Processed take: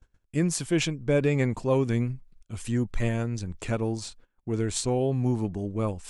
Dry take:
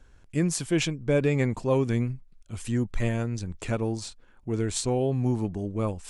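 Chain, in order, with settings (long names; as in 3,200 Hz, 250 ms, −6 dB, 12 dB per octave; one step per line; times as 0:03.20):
noise gate −50 dBFS, range −21 dB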